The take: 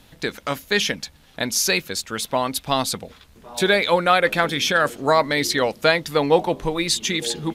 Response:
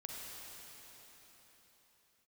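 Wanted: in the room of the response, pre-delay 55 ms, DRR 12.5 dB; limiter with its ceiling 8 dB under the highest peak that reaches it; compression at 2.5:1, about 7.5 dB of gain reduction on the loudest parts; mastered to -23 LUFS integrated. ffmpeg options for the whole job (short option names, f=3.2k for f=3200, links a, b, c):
-filter_complex "[0:a]acompressor=threshold=-23dB:ratio=2.5,alimiter=limit=-16.5dB:level=0:latency=1,asplit=2[a][b];[1:a]atrim=start_sample=2205,adelay=55[c];[b][c]afir=irnorm=-1:irlink=0,volume=-11dB[d];[a][d]amix=inputs=2:normalize=0,volume=4.5dB"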